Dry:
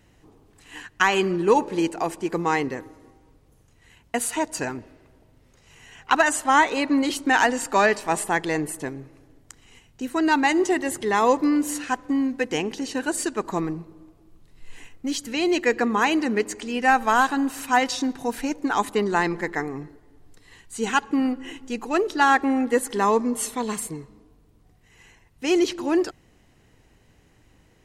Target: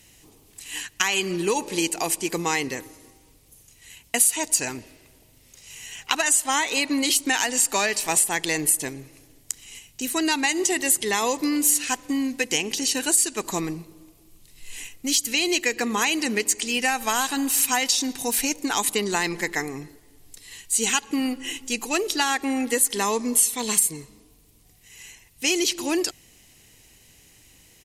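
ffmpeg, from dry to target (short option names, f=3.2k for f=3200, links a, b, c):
-af "aexciter=amount=5.3:drive=1.5:freq=2.1k,acompressor=threshold=-18dB:ratio=6,highshelf=f=11k:g=9.5,aresample=32000,aresample=44100,volume=-1.5dB"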